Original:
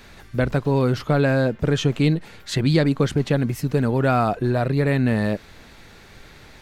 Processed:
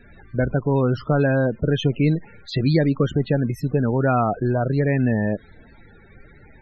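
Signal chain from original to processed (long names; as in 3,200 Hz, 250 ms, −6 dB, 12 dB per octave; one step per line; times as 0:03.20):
spectral peaks only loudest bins 32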